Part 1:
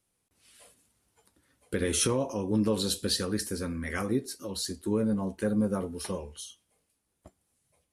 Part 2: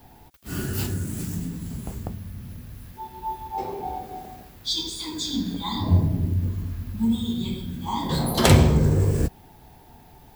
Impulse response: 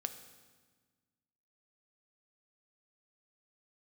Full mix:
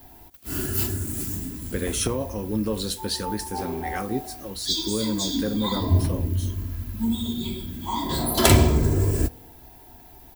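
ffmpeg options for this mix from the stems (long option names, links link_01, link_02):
-filter_complex "[0:a]volume=0.5dB[link_01];[1:a]highshelf=frequency=9200:gain=10,aecho=1:1:3:0.55,volume=-3dB,asplit=2[link_02][link_03];[link_03]volume=-11.5dB[link_04];[2:a]atrim=start_sample=2205[link_05];[link_04][link_05]afir=irnorm=-1:irlink=0[link_06];[link_01][link_02][link_06]amix=inputs=3:normalize=0"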